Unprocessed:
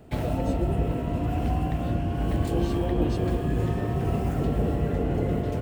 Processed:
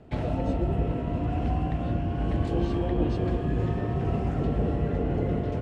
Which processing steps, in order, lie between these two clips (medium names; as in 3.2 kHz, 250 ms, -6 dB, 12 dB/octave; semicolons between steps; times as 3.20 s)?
distance through air 110 m; trim -1 dB